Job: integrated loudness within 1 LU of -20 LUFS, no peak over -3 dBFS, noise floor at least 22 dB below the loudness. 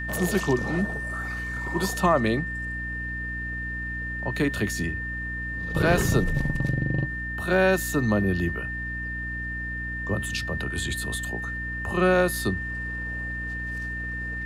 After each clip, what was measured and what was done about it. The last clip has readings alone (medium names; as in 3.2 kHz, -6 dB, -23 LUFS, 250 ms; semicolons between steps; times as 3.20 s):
hum 60 Hz; highest harmonic 300 Hz; hum level -33 dBFS; steady tone 1.8 kHz; tone level -31 dBFS; loudness -26.5 LUFS; peak level -7.5 dBFS; loudness target -20.0 LUFS
-> de-hum 60 Hz, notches 5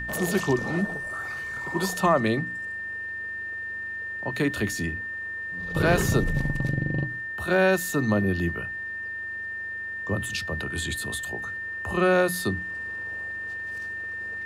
hum not found; steady tone 1.8 kHz; tone level -31 dBFS
-> band-stop 1.8 kHz, Q 30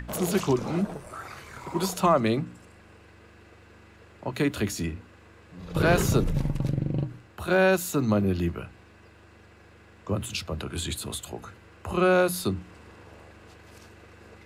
steady tone not found; loudness -26.5 LUFS; peak level -8.5 dBFS; loudness target -20.0 LUFS
-> trim +6.5 dB; peak limiter -3 dBFS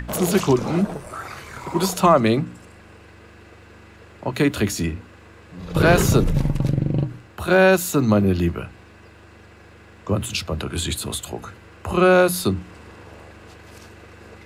loudness -20.0 LUFS; peak level -3.0 dBFS; noise floor -47 dBFS